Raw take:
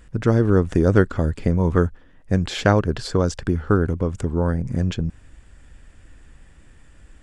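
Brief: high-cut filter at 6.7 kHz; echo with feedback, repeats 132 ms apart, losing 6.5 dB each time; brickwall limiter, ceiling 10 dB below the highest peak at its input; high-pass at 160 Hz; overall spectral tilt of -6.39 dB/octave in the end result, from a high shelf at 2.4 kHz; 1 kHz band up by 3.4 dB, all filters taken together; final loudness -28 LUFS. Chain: high-pass 160 Hz; low-pass 6.7 kHz; peaking EQ 1 kHz +5.5 dB; treble shelf 2.4 kHz -4 dB; peak limiter -9 dBFS; feedback delay 132 ms, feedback 47%, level -6.5 dB; trim -4 dB

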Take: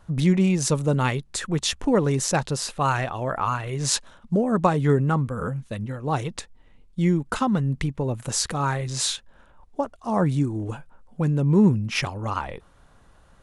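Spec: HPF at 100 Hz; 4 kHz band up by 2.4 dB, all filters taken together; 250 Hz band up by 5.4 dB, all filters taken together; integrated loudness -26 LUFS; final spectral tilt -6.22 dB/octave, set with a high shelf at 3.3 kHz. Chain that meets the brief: high-pass 100 Hz; peaking EQ 250 Hz +8 dB; treble shelf 3.3 kHz -5.5 dB; peaking EQ 4 kHz +7 dB; trim -5 dB

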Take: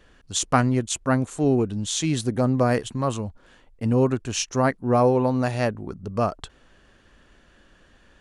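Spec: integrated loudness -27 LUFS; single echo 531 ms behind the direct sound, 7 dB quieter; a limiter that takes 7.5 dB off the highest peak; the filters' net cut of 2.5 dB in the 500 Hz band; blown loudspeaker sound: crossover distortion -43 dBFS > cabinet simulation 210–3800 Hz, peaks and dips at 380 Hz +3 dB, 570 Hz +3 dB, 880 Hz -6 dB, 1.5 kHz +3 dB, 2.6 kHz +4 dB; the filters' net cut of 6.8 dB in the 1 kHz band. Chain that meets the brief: peaking EQ 500 Hz -4 dB; peaking EQ 1 kHz -6.5 dB; peak limiter -15.5 dBFS; delay 531 ms -7 dB; crossover distortion -43 dBFS; cabinet simulation 210–3800 Hz, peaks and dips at 380 Hz +3 dB, 570 Hz +3 dB, 880 Hz -6 dB, 1.5 kHz +3 dB, 2.6 kHz +4 dB; trim +2.5 dB

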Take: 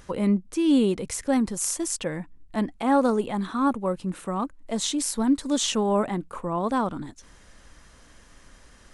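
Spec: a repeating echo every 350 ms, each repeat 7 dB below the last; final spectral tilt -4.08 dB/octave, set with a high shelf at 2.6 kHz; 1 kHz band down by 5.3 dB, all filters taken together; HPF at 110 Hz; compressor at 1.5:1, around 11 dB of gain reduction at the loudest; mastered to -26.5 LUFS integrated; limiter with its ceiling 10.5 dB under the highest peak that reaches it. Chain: high-pass 110 Hz; peaking EQ 1 kHz -7.5 dB; treble shelf 2.6 kHz +5.5 dB; compression 1.5:1, threshold -49 dBFS; peak limiter -27.5 dBFS; feedback delay 350 ms, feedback 45%, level -7 dB; trim +10 dB

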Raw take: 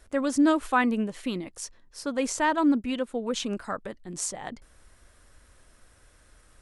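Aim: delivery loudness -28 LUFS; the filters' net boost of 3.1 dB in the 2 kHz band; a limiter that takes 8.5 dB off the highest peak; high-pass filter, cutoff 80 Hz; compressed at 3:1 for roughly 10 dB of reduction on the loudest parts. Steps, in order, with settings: high-pass 80 Hz; peaking EQ 2 kHz +4 dB; compression 3:1, threshold -31 dBFS; trim +8.5 dB; peak limiter -18 dBFS

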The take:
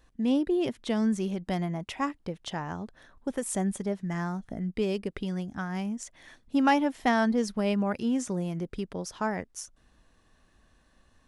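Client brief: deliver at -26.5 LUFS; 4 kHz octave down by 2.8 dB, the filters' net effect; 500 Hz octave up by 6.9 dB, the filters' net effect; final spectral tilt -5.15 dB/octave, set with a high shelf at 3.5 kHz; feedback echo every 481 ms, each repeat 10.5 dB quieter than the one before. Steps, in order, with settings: peaking EQ 500 Hz +9 dB; treble shelf 3.5 kHz +5.5 dB; peaking EQ 4 kHz -8.5 dB; feedback delay 481 ms, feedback 30%, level -10.5 dB

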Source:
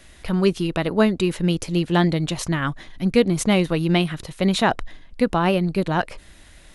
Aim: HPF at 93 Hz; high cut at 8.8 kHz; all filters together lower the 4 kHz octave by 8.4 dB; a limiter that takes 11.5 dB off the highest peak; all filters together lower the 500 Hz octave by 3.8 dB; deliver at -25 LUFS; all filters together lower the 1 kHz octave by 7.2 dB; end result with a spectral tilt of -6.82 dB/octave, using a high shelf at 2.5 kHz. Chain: high-pass 93 Hz; low-pass 8.8 kHz; peaking EQ 500 Hz -3 dB; peaking EQ 1 kHz -7.5 dB; treble shelf 2.5 kHz -5 dB; peaking EQ 4 kHz -6.5 dB; trim +3.5 dB; peak limiter -16 dBFS

